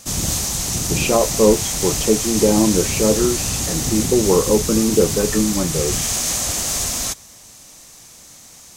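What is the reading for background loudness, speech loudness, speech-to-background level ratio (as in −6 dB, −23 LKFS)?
−20.0 LKFS, −19.0 LKFS, 1.0 dB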